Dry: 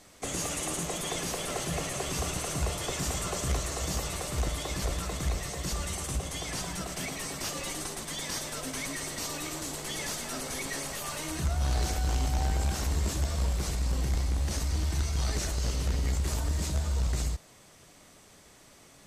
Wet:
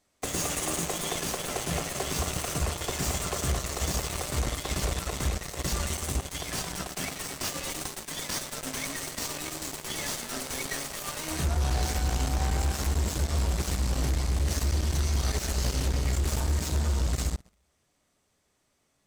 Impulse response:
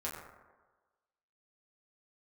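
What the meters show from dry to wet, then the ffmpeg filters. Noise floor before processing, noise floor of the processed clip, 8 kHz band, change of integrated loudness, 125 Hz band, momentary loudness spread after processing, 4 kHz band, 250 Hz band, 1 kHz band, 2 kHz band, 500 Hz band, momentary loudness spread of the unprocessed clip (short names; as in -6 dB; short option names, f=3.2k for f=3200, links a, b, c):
-56 dBFS, -73 dBFS, +1.5 dB, +2.0 dB, +2.0 dB, 5 LU, +2.0 dB, +1.5 dB, +2.0 dB, +2.0 dB, +1.5 dB, 5 LU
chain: -filter_complex "[0:a]asplit=2[a][b];[1:a]atrim=start_sample=2205[c];[b][c]afir=irnorm=-1:irlink=0,volume=-10.5dB[d];[a][d]amix=inputs=2:normalize=0,alimiter=limit=-21dB:level=0:latency=1:release=367,aeval=exprs='0.0891*(cos(1*acos(clip(val(0)/0.0891,-1,1)))-cos(1*PI/2))+0.0141*(cos(7*acos(clip(val(0)/0.0891,-1,1)))-cos(7*PI/2))':c=same,volume=1.5dB"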